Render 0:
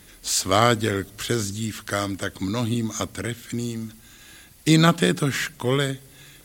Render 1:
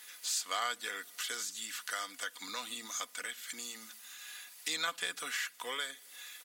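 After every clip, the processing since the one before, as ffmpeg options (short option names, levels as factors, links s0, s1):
-af "highpass=1100,aecho=1:1:4.1:0.47,acompressor=threshold=0.01:ratio=2,volume=0.891"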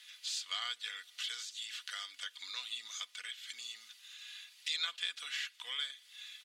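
-af "bandpass=f=3300:t=q:w=1.9:csg=0,volume=1.41"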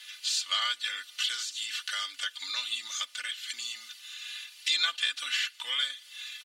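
-af "aecho=1:1:3.4:0.85,volume=2.24"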